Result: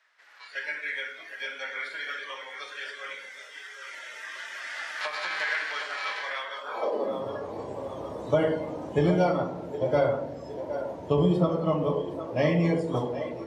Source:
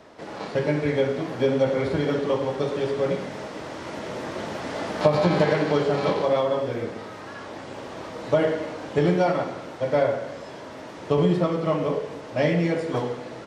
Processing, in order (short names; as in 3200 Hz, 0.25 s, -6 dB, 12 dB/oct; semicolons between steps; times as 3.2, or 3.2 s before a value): split-band echo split 340 Hz, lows 0.116 s, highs 0.764 s, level -9 dB; high-pass sweep 1700 Hz -> 70 Hz, 6.6–7.41; spectral noise reduction 12 dB; gain -3 dB